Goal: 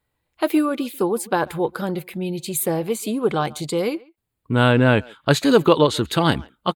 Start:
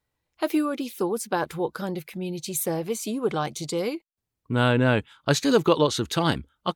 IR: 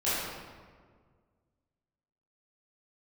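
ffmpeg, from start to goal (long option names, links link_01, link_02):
-filter_complex "[0:a]equalizer=frequency=5800:width_type=o:width=0.38:gain=-11.5,asplit=2[link_01][link_02];[link_02]adelay=140,highpass=300,lowpass=3400,asoftclip=type=hard:threshold=-14.5dB,volume=-23dB[link_03];[link_01][link_03]amix=inputs=2:normalize=0,volume=5dB"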